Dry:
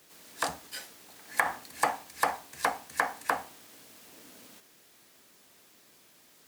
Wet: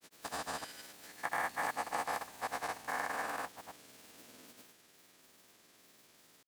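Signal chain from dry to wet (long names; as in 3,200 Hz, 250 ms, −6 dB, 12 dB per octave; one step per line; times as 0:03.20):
spectrum averaged block by block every 200 ms
granular cloud, spray 165 ms, pitch spread up and down by 0 semitones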